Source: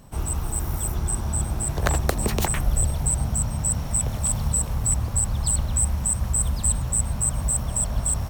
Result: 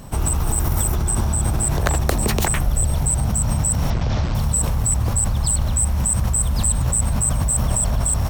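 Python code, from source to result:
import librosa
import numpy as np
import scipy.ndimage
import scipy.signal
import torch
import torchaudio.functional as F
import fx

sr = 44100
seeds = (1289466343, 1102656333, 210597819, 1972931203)

p1 = fx.cvsd(x, sr, bps=32000, at=(3.9, 4.35))
p2 = fx.over_compress(p1, sr, threshold_db=-28.0, ratio=-0.5)
p3 = p1 + (p2 * librosa.db_to_amplitude(0.0))
y = p3 * librosa.db_to_amplitude(1.5)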